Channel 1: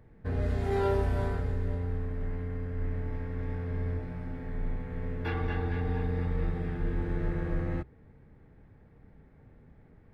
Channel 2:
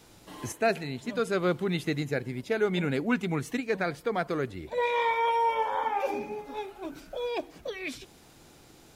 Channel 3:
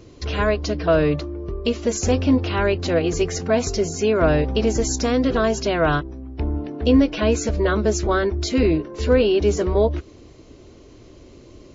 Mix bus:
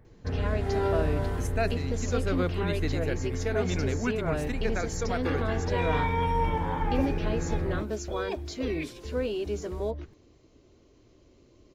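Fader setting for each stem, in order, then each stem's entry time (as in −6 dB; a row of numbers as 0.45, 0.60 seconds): +0.5, −3.5, −13.5 decibels; 0.00, 0.95, 0.05 seconds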